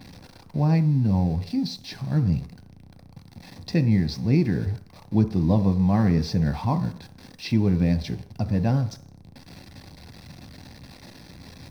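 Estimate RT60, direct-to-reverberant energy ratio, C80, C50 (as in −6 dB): 0.55 s, 8.0 dB, 17.5 dB, 15.0 dB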